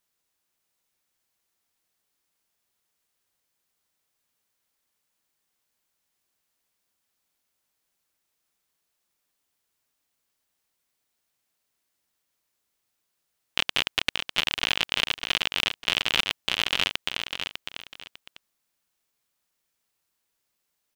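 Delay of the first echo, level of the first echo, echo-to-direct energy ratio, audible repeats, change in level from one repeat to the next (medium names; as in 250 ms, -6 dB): 600 ms, -7.0 dB, -6.5 dB, 2, -11.5 dB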